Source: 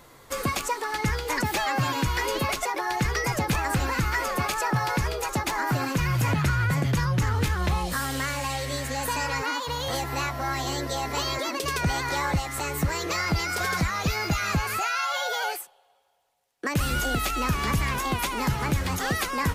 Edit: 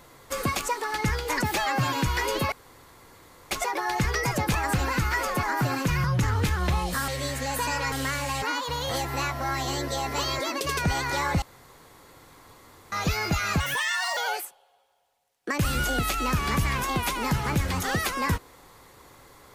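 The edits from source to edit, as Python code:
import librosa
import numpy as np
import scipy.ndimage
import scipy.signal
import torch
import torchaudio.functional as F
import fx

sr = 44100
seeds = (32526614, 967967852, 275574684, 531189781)

y = fx.edit(x, sr, fx.insert_room_tone(at_s=2.52, length_s=0.99),
    fx.cut(start_s=4.44, length_s=1.09),
    fx.cut(start_s=6.14, length_s=0.89),
    fx.move(start_s=8.07, length_s=0.5, to_s=9.41),
    fx.room_tone_fill(start_s=12.41, length_s=1.5),
    fx.speed_span(start_s=14.59, length_s=0.74, speed=1.3), tone=tone)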